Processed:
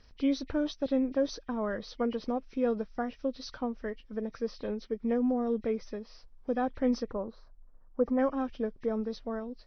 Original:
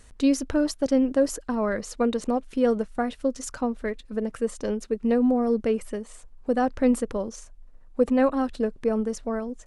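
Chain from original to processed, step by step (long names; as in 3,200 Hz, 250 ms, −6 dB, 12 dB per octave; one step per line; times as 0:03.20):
hearing-aid frequency compression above 1,800 Hz 1.5 to 1
0:07.08–0:08.19: high shelf with overshoot 1,900 Hz −13 dB, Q 1.5
level −7 dB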